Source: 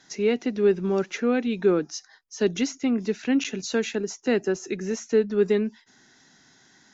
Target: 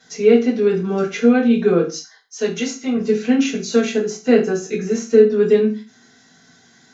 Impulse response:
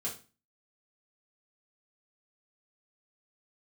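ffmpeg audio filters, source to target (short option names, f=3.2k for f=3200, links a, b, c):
-filter_complex "[0:a]asettb=1/sr,asplit=3[a][b][c];[a]atrim=end=1.914[d];[b]atrim=start=1.91:end=2.97,asetpts=PTS-STARTPTS,afade=t=in:d=0.004:c=qsin,afade=t=out:st=1.056:d=0.004:c=qsin,lowshelf=f=340:g=-11[e];[c]atrim=start=2.966[f];[d][e]acrossfade=d=0.004:c1=hsin:c2=qsin[g];[g][f]acrossfade=d=0.004:c1=qsin:c2=hsin[h];[1:a]atrim=start_sample=2205,afade=t=out:st=0.27:d=0.01,atrim=end_sample=12348[i];[h][i]afir=irnorm=-1:irlink=0,volume=4dB"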